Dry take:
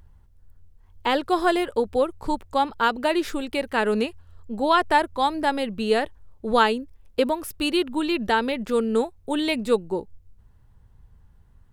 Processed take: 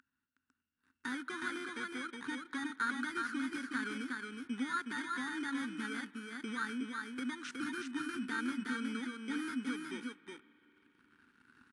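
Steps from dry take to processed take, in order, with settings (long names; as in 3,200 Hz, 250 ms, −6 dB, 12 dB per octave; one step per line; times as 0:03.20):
samples in bit-reversed order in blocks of 16 samples
camcorder AGC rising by 5.6 dB per second
brickwall limiter −14 dBFS, peak gain reduction 8 dB
downward compressor 3 to 1, threshold −35 dBFS, peak gain reduction 12.5 dB
spectral tilt +4 dB per octave
single-tap delay 366 ms −5 dB
leveller curve on the samples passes 3
pair of resonant band-passes 620 Hz, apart 2.5 octaves
convolution reverb RT60 5.3 s, pre-delay 31 ms, DRR 19.5 dB
level +1 dB
AAC 64 kbit/s 22,050 Hz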